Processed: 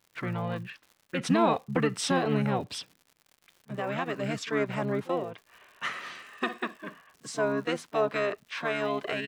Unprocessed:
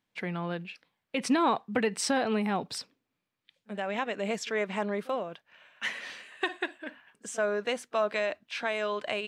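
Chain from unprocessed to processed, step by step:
pitch-shifted copies added −7 semitones −1 dB
harmonic and percussive parts rebalanced percussive −3 dB
surface crackle 140 per second −45 dBFS

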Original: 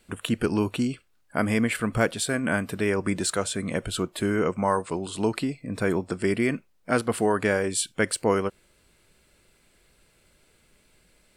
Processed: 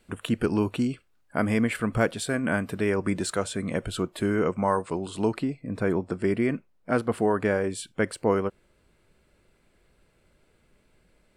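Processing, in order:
high-shelf EQ 2,500 Hz −6 dB, from 0:05.34 −12 dB

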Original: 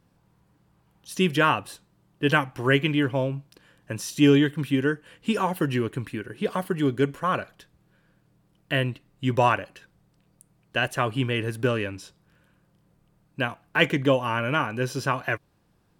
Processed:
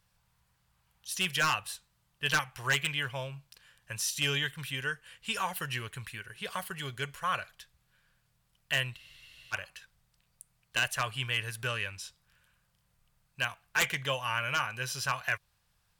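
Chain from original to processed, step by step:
guitar amp tone stack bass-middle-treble 10-0-10
wave folding −21.5 dBFS
frozen spectrum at 0:08.99, 0.55 s
level +3 dB

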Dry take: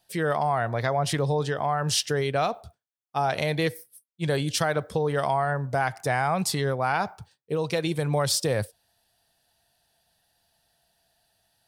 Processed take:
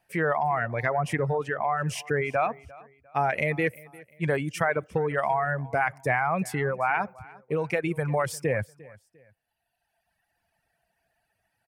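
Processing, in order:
dynamic equaliser 4,300 Hz, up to −6 dB, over −45 dBFS, Q 2.1
reverb reduction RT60 1.7 s
high shelf with overshoot 2,900 Hz −8 dB, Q 3
repeating echo 350 ms, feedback 34%, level −22 dB

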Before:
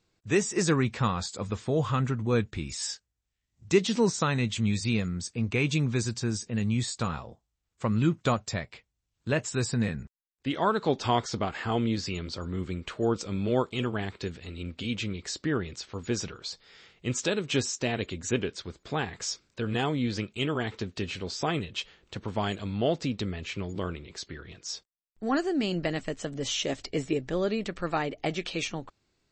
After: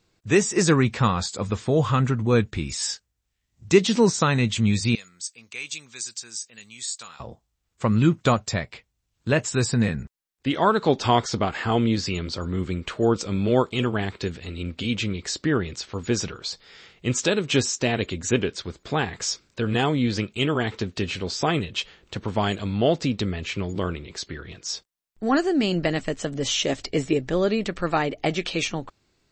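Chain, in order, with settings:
0:04.95–0:07.20: first difference
level +6 dB

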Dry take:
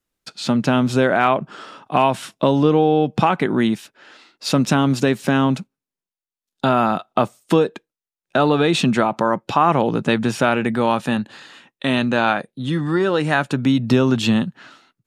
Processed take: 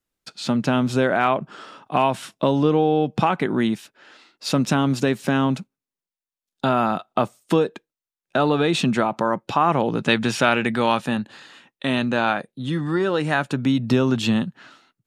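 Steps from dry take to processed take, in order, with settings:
0:09.98–0:11.00: parametric band 3,500 Hz +7 dB 2.7 octaves
level −3 dB

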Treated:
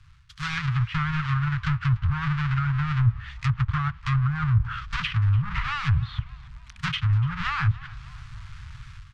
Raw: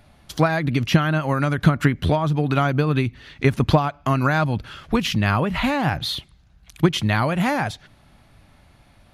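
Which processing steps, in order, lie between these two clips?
each half-wave held at its own peak
reversed playback
downward compressor 16 to 1, threshold −24 dBFS, peak gain reduction 19 dB
reversed playback
elliptic band-stop filter 130–1,200 Hz, stop band 40 dB
high-frequency loss of the air 93 metres
automatic gain control gain up to 13 dB
treble cut that deepens with the level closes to 500 Hz, closed at −12.5 dBFS
on a send: echo with shifted repeats 292 ms, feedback 54%, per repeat −62 Hz, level −21 dB
on the sum: level −4 dB

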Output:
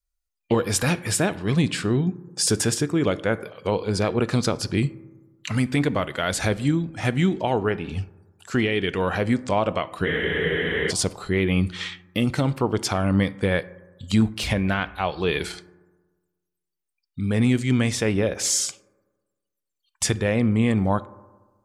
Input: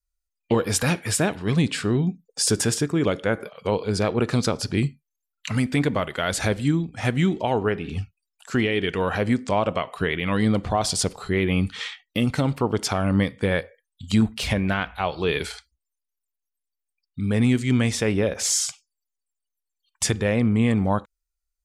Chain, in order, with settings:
on a send at −17.5 dB: convolution reverb RT60 1.3 s, pre-delay 3 ms
on the sum: frozen spectrum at 0:10.07, 0.83 s

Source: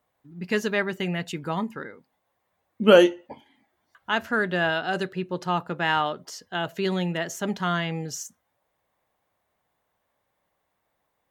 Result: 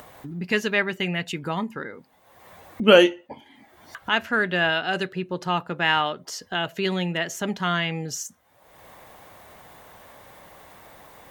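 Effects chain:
dynamic equaliser 2,500 Hz, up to +7 dB, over −41 dBFS, Q 1.3
upward compression, threshold −25 dBFS

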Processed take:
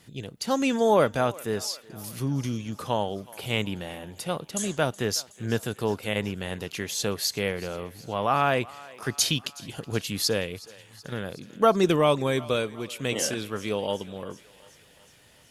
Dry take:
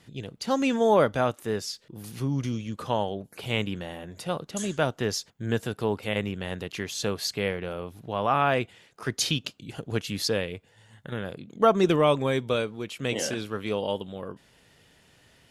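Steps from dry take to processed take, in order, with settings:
high-shelf EQ 8,000 Hz +10.5 dB
feedback echo with a high-pass in the loop 371 ms, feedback 66%, high-pass 490 Hz, level −20 dB

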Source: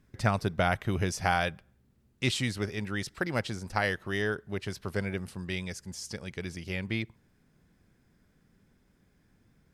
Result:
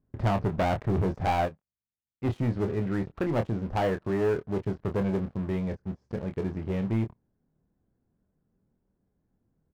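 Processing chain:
Chebyshev low-pass filter 770 Hz, order 2
leveller curve on the samples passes 3
soft clipping −17.5 dBFS, distortion −20 dB
double-tracking delay 26 ms −7 dB
0:01.45–0:02.29: expander for the loud parts 2.5 to 1, over −41 dBFS
level −2.5 dB

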